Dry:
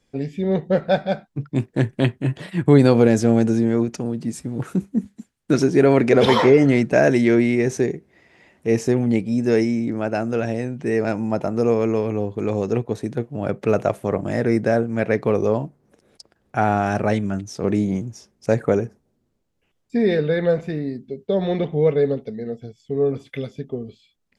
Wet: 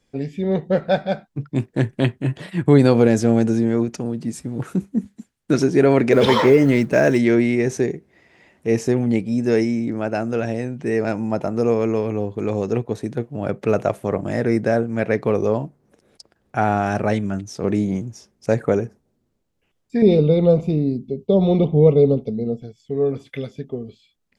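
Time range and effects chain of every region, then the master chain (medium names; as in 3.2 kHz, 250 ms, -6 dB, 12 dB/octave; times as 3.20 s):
6.12–7.18 s: companding laws mixed up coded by mu + band-stop 730 Hz, Q 9.2
20.02–22.63 s: Butterworth band-stop 1.7 kHz, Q 1.6 + bass shelf 360 Hz +9.5 dB
whole clip: none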